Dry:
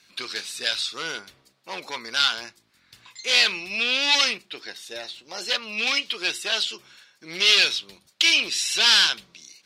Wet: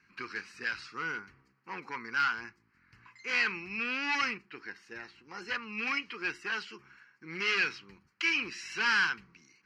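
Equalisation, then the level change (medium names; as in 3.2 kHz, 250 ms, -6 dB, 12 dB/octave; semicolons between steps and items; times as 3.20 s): distance through air 240 m; static phaser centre 1.5 kHz, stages 4; 0.0 dB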